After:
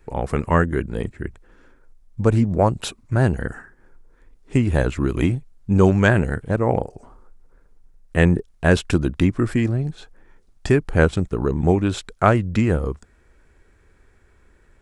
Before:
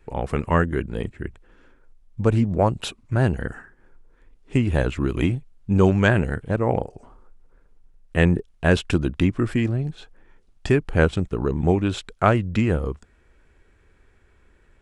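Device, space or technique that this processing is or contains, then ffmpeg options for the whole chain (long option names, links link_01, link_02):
exciter from parts: -filter_complex "[0:a]asplit=2[link_01][link_02];[link_02]highpass=frequency=2700:width=0.5412,highpass=frequency=2700:width=1.3066,asoftclip=type=tanh:threshold=-21dB,volume=-6.5dB[link_03];[link_01][link_03]amix=inputs=2:normalize=0,volume=2dB"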